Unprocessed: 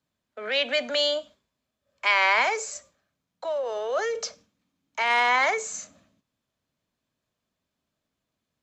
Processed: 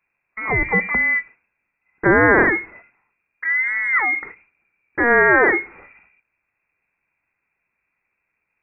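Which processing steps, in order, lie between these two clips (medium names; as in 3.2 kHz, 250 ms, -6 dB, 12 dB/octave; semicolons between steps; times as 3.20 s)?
frequency inversion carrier 2.6 kHz; 1.00–2.07 s: dynamic bell 560 Hz, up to +5 dB, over -49 dBFS, Q 0.83; trim +8 dB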